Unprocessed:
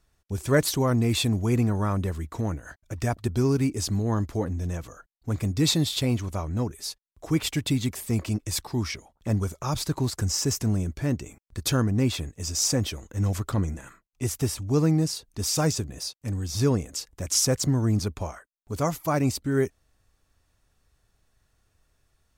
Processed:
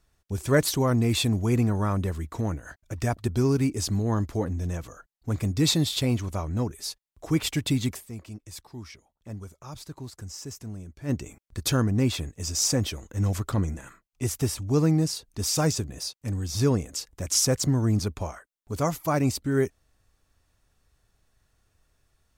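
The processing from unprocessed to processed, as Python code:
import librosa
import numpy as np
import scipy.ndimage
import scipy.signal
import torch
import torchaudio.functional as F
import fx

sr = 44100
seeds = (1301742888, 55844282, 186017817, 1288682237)

y = fx.edit(x, sr, fx.fade_down_up(start_s=7.96, length_s=3.14, db=-13.0, fade_s=0.27, curve='exp'), tone=tone)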